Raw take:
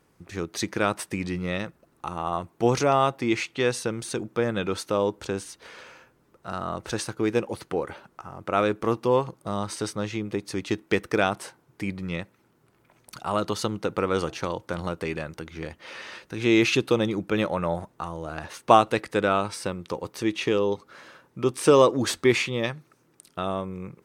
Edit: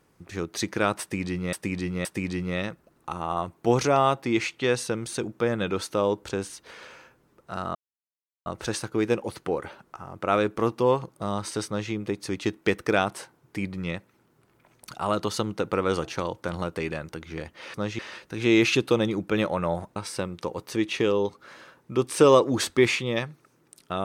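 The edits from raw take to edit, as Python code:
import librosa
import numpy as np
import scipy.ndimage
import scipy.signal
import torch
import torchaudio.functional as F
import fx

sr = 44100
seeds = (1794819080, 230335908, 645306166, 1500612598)

y = fx.edit(x, sr, fx.repeat(start_s=1.01, length_s=0.52, count=3),
    fx.insert_silence(at_s=6.71, length_s=0.71),
    fx.duplicate(start_s=9.92, length_s=0.25, to_s=15.99),
    fx.cut(start_s=17.96, length_s=1.47), tone=tone)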